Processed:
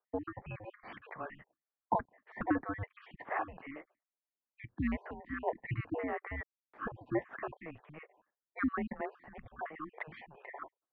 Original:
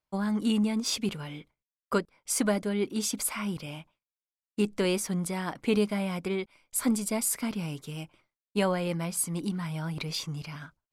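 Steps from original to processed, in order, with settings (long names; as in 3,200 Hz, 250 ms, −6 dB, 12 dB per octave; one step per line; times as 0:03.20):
time-frequency cells dropped at random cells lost 42%
0:06.37–0:06.84: bit-depth reduction 8 bits, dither none
single-sideband voice off tune −310 Hz 590–2,100 Hz
level +4.5 dB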